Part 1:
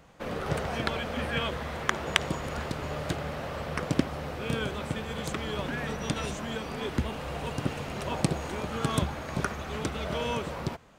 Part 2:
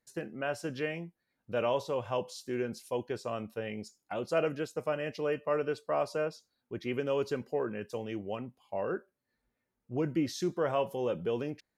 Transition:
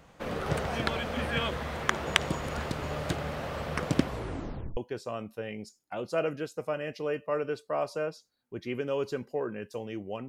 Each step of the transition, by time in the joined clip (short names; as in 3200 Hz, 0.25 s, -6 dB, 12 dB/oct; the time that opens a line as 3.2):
part 1
4.03 tape stop 0.74 s
4.77 switch to part 2 from 2.96 s